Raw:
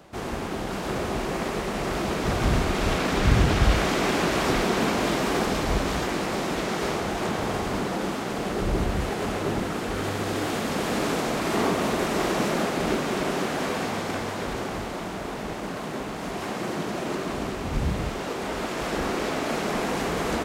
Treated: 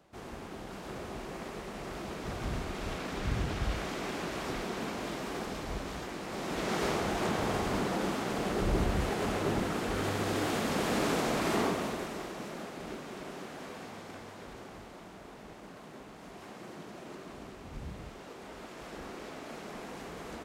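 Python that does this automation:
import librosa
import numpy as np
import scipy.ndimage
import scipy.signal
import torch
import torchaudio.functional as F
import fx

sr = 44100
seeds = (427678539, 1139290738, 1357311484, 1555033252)

y = fx.gain(x, sr, db=fx.line((6.22, -13.0), (6.74, -4.0), (11.5, -4.0), (12.31, -16.5)))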